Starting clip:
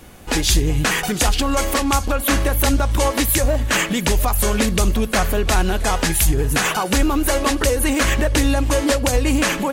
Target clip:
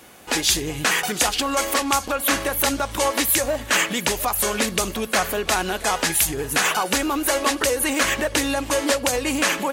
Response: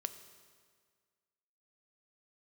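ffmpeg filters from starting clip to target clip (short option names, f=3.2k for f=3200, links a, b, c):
-af "highpass=f=460:p=1"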